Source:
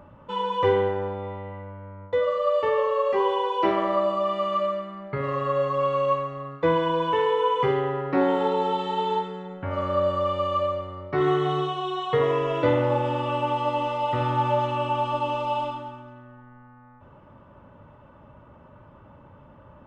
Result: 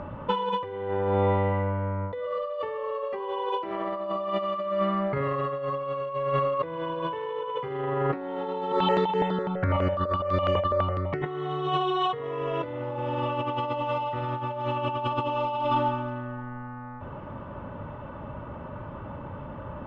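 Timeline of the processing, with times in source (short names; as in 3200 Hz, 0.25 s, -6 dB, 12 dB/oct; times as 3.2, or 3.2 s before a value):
5.55–6.35 echo throw 0.45 s, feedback 55%, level -7.5 dB
8.72–11.26 step phaser 12 Hz 790–3700 Hz
13.48–13.91 echo throw 0.25 s, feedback 50%, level -10 dB
whole clip: negative-ratio compressor -33 dBFS, ratio -1; Bessel low-pass 3500 Hz, order 2; gain +4.5 dB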